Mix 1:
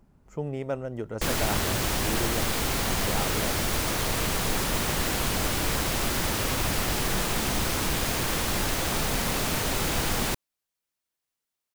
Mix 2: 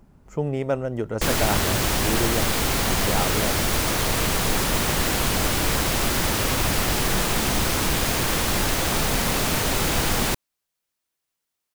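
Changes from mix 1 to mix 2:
speech +6.5 dB; background +4.5 dB

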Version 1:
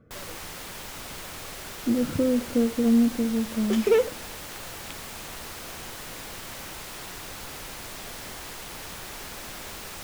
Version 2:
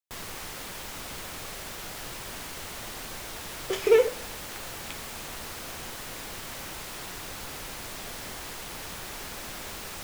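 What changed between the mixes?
speech: muted; second sound: send +10.0 dB

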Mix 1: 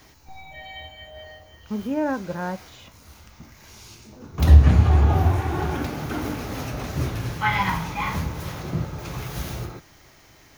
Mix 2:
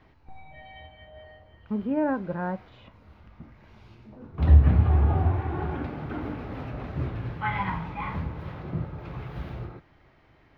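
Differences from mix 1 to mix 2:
background -4.0 dB; master: add air absorption 440 m

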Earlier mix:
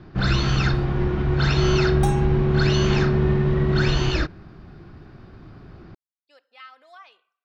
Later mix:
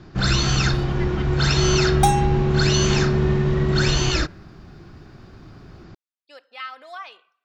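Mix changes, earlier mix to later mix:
speech +10.0 dB; first sound: remove air absorption 180 m; second sound +10.5 dB

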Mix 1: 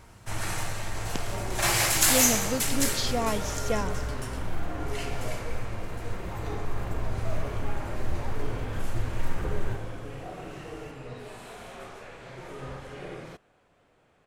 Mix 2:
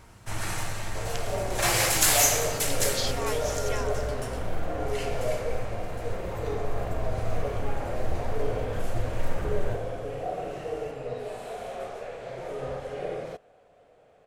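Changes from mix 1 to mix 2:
speech: add HPF 1100 Hz; second sound: add band shelf 570 Hz +10.5 dB 1 oct

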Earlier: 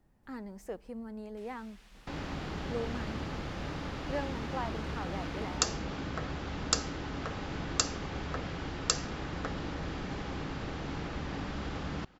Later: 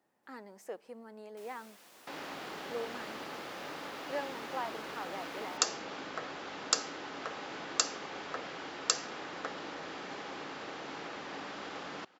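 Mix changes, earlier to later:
first sound: remove band-pass 2500 Hz, Q 0.7; master: add HPF 410 Hz 12 dB/oct

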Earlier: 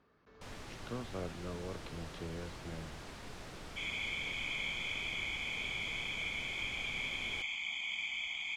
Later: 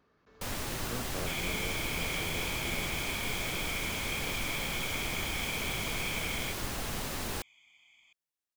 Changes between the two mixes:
first sound +11.0 dB; second sound: entry -2.50 s; master: remove air absorption 67 m

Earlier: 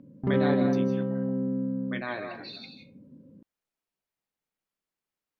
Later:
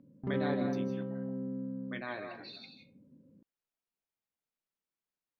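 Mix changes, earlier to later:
speech -6.0 dB; background -9.0 dB

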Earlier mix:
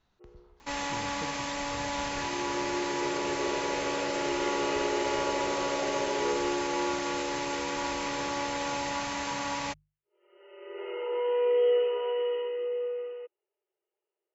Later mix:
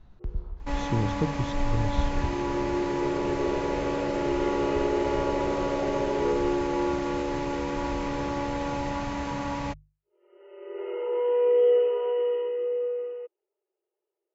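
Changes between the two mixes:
speech +9.0 dB; master: add tilt -3.5 dB/oct

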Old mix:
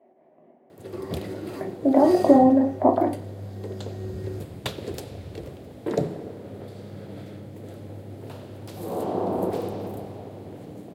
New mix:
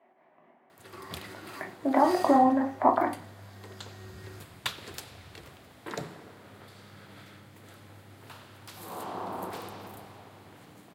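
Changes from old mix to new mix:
speech +6.0 dB; master: add resonant low shelf 790 Hz -12.5 dB, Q 1.5

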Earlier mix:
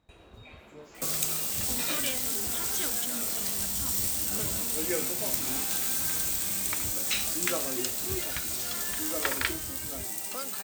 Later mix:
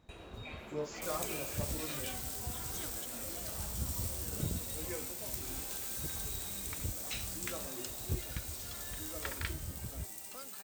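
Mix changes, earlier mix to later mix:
speech +10.5 dB; first sound +3.5 dB; second sound -11.5 dB

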